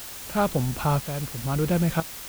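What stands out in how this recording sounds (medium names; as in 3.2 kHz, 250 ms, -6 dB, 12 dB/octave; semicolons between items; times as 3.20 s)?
tremolo saw up 1 Hz, depth 75%; a quantiser's noise floor 6-bit, dither triangular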